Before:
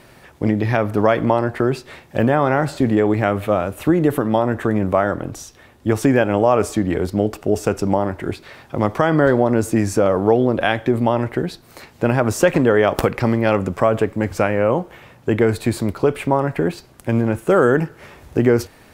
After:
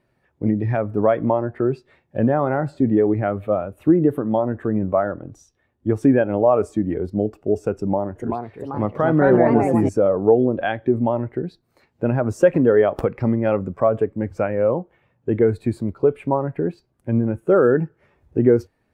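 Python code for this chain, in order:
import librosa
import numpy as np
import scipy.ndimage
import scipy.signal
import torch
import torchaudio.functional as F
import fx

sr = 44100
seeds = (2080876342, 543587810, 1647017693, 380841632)

y = fx.echo_pitch(x, sr, ms=416, semitones=3, count=2, db_per_echo=-3.0, at=(7.74, 9.89))
y = fx.spectral_expand(y, sr, expansion=1.5)
y = y * librosa.db_to_amplitude(-2.0)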